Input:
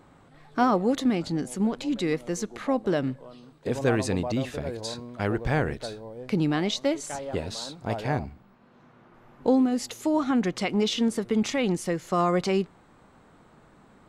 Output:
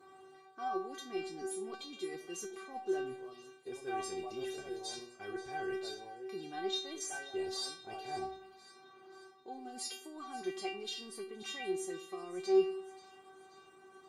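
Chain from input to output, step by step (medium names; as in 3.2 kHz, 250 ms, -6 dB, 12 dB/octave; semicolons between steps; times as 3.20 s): Bessel high-pass 160 Hz; peaking EQ 1.9 kHz -4.5 dB 0.3 oct; reverse; compression 6:1, threshold -35 dBFS, peak gain reduction 17 dB; reverse; inharmonic resonator 380 Hz, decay 0.45 s, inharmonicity 0.002; two-band feedback delay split 1.4 kHz, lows 97 ms, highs 531 ms, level -16 dB; trim +17 dB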